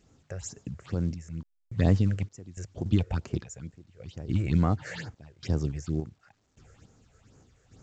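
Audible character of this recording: phasing stages 6, 2.2 Hz, lowest notch 230–3900 Hz; random-step tremolo, depth 100%; A-law

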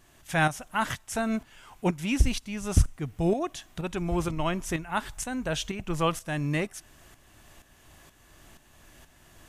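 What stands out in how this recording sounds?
tremolo saw up 2.1 Hz, depth 65%

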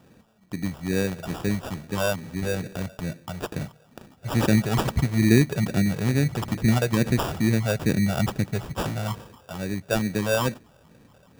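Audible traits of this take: phasing stages 8, 2.3 Hz, lowest notch 270–1400 Hz; aliases and images of a low sample rate 2.1 kHz, jitter 0%

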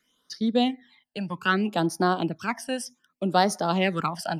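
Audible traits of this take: phasing stages 12, 0.64 Hz, lowest notch 370–2700 Hz

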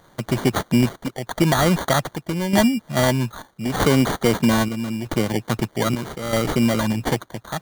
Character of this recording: a quantiser's noise floor 10-bit, dither triangular; chopped level 0.79 Hz, depth 60%, duty 70%; aliases and images of a low sample rate 2.6 kHz, jitter 0%

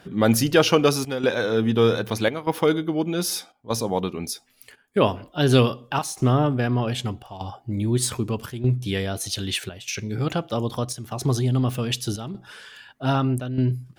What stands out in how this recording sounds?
chopped level 0.81 Hz, depth 65%, duty 85%

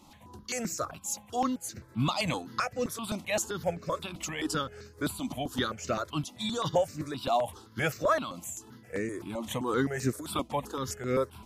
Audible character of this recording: tremolo triangle 3.6 Hz, depth 60%; notches that jump at a steady rate 7.7 Hz 440–3300 Hz

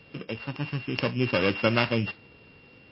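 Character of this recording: a buzz of ramps at a fixed pitch in blocks of 16 samples; MP3

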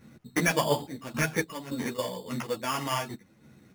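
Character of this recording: aliases and images of a low sample rate 4 kHz, jitter 0%; random-step tremolo, depth 75%; a quantiser's noise floor 12-bit, dither none; a shimmering, thickened sound

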